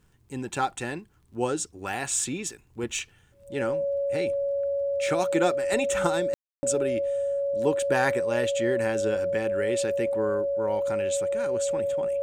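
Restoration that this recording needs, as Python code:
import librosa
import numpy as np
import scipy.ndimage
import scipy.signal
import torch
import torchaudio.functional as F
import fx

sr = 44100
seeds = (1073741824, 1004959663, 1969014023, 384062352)

y = fx.fix_declick_ar(x, sr, threshold=6.5)
y = fx.notch(y, sr, hz=560.0, q=30.0)
y = fx.fix_ambience(y, sr, seeds[0], print_start_s=3.02, print_end_s=3.52, start_s=6.34, end_s=6.63)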